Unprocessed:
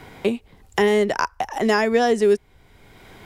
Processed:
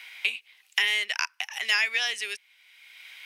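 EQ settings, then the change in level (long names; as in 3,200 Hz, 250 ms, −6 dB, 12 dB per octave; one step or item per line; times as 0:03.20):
high-pass with resonance 2,500 Hz, resonance Q 2.9
notch filter 7,300 Hz, Q 9.9
0.0 dB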